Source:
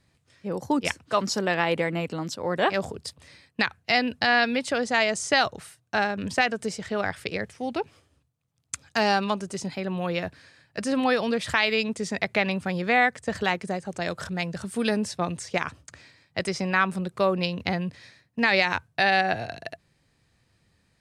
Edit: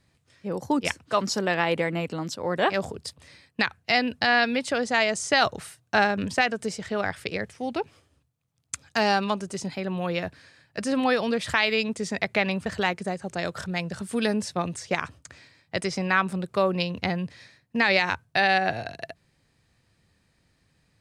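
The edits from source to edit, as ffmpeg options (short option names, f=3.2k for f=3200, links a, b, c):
-filter_complex "[0:a]asplit=4[a][b][c][d];[a]atrim=end=5.422[e];[b]atrim=start=5.418:end=6.252,asetpts=PTS-STARTPTS,volume=3.5dB[f];[c]atrim=start=6.248:end=12.662[g];[d]atrim=start=13.288[h];[e][f]acrossfade=d=0.004:c1=hsin:c2=hsin[i];[i][g]acrossfade=d=0.004:c1=hsin:c2=hsin[j];[j][h]acrossfade=d=0.004:c1=hsin:c2=hsin"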